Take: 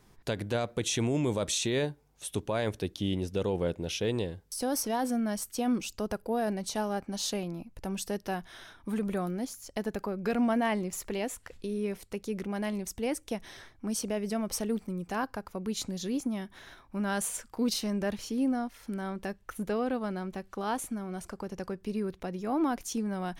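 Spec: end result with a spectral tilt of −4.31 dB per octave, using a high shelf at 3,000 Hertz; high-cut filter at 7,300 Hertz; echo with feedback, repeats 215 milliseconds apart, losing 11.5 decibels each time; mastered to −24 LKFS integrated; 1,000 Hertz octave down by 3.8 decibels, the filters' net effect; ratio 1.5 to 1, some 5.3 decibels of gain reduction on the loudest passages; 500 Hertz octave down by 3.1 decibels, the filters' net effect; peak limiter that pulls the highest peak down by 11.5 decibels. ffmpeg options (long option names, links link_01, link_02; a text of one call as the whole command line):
ffmpeg -i in.wav -af "lowpass=7300,equalizer=frequency=500:width_type=o:gain=-3,equalizer=frequency=1000:width_type=o:gain=-4.5,highshelf=frequency=3000:gain=4.5,acompressor=threshold=-40dB:ratio=1.5,alimiter=level_in=9.5dB:limit=-24dB:level=0:latency=1,volume=-9.5dB,aecho=1:1:215|430|645:0.266|0.0718|0.0194,volume=18.5dB" out.wav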